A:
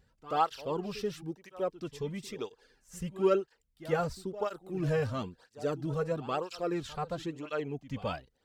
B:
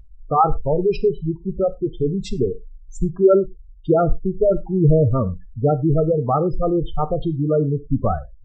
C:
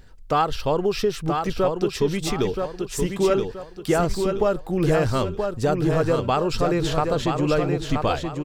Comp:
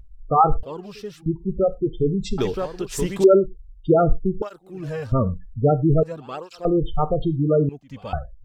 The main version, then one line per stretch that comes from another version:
B
0:00.63–0:01.26: punch in from A
0:02.38–0:03.24: punch in from C
0:04.42–0:05.12: punch in from A
0:06.03–0:06.65: punch in from A
0:07.69–0:08.13: punch in from A

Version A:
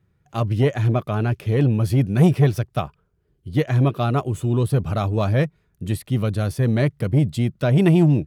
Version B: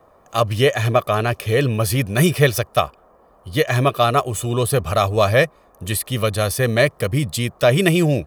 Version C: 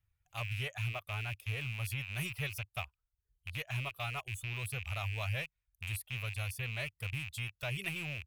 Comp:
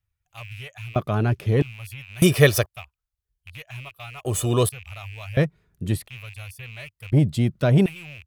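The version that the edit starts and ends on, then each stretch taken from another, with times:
C
0:00.96–0:01.62: punch in from A
0:02.22–0:02.66: punch in from B
0:04.25–0:04.69: punch in from B
0:05.37–0:06.08: punch in from A
0:07.12–0:07.86: punch in from A

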